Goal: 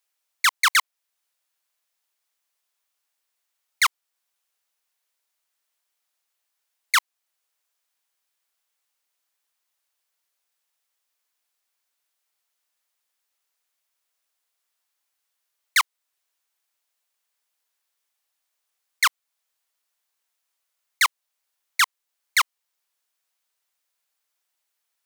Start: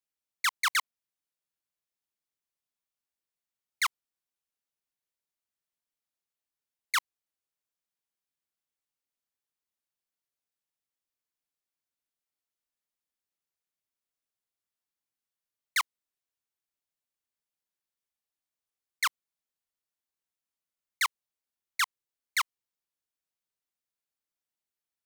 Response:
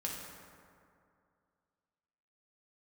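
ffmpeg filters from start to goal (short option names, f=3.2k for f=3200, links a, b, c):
-filter_complex "[0:a]highpass=620,asplit=2[a][b];[b]alimiter=level_in=4dB:limit=-24dB:level=0:latency=1:release=423,volume=-4dB,volume=1dB[c];[a][c]amix=inputs=2:normalize=0,volume=6.5dB"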